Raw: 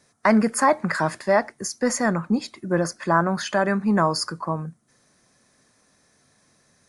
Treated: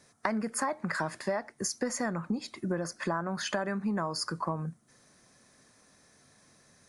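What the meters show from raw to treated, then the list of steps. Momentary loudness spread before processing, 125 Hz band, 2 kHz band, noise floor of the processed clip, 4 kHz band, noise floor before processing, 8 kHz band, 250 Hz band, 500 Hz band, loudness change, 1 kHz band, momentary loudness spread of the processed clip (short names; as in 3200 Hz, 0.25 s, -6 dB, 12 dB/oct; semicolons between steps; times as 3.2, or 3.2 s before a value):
9 LU, -9.0 dB, -10.0 dB, -63 dBFS, -6.5 dB, -63 dBFS, -6.5 dB, -10.5 dB, -11.5 dB, -10.5 dB, -12.0 dB, 3 LU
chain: compressor 12:1, threshold -28 dBFS, peak gain reduction 15.5 dB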